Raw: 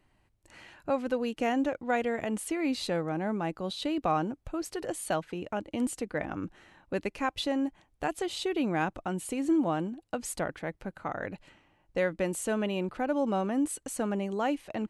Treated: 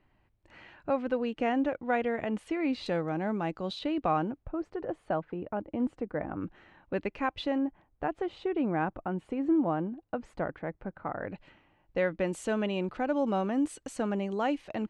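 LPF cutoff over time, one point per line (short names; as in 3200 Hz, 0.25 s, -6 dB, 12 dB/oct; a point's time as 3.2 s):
3000 Hz
from 2.86 s 5300 Hz
from 3.79 s 3000 Hz
from 4.43 s 1300 Hz
from 6.41 s 2900 Hz
from 7.58 s 1600 Hz
from 11.3 s 3400 Hz
from 12.27 s 5600 Hz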